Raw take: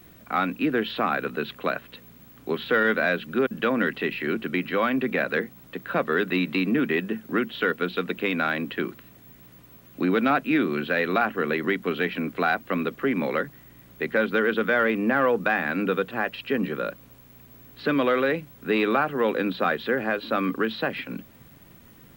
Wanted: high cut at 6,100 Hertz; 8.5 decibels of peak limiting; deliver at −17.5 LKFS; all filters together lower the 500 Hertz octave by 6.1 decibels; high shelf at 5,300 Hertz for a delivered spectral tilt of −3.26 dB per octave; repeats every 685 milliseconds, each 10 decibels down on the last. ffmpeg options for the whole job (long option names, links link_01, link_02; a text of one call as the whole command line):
ffmpeg -i in.wav -af "lowpass=6100,equalizer=frequency=500:width_type=o:gain=-7.5,highshelf=frequency=5300:gain=5.5,alimiter=limit=-20.5dB:level=0:latency=1,aecho=1:1:685|1370|2055|2740:0.316|0.101|0.0324|0.0104,volume=13dB" out.wav